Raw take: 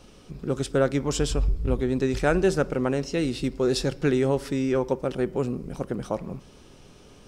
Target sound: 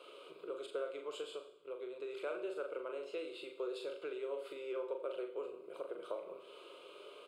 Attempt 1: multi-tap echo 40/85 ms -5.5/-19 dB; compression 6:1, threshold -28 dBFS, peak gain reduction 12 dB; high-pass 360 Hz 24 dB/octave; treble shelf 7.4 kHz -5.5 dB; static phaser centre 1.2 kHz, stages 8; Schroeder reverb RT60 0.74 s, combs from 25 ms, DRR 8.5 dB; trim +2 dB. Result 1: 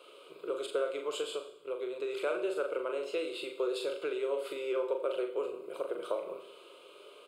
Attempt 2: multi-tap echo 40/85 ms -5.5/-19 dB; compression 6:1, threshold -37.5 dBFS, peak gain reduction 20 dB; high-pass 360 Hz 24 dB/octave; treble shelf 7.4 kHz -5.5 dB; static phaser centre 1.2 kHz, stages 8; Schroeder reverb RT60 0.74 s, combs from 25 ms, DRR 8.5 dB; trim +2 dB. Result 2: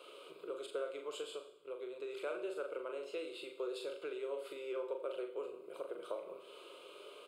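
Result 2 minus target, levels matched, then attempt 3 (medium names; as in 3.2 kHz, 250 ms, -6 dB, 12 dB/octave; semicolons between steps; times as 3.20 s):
8 kHz band +4.5 dB
multi-tap echo 40/85 ms -5.5/-19 dB; compression 6:1, threshold -37.5 dBFS, peak gain reduction 20 dB; high-pass 360 Hz 24 dB/octave; treble shelf 7.4 kHz -14 dB; static phaser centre 1.2 kHz, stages 8; Schroeder reverb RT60 0.74 s, combs from 25 ms, DRR 8.5 dB; trim +2 dB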